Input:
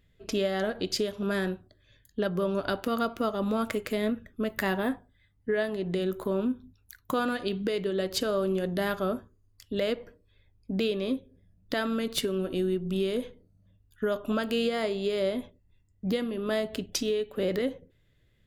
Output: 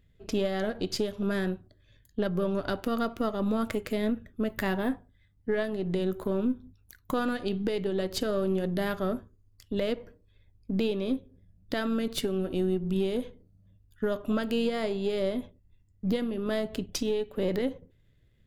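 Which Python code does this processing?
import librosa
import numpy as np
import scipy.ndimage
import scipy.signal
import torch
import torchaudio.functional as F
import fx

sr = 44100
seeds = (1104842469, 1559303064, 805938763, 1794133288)

y = np.where(x < 0.0, 10.0 ** (-3.0 / 20.0) * x, x)
y = fx.low_shelf(y, sr, hz=340.0, db=6.5)
y = y * librosa.db_to_amplitude(-2.0)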